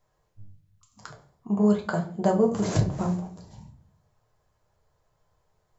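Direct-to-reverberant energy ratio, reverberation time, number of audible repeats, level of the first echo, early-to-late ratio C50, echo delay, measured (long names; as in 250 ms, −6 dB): 1.0 dB, 0.45 s, no echo audible, no echo audible, 12.0 dB, no echo audible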